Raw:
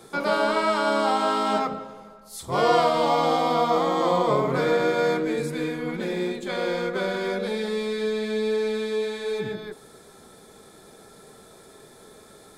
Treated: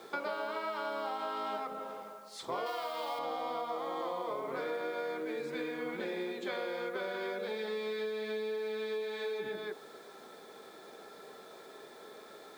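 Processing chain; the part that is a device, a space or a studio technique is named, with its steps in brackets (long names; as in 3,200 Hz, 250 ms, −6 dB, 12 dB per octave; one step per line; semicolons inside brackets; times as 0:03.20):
baby monitor (band-pass filter 350–4,100 Hz; downward compressor 10 to 1, threshold −34 dBFS, peak gain reduction 18.5 dB; white noise bed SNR 29 dB)
0:02.66–0:03.19: spectral tilt +2.5 dB per octave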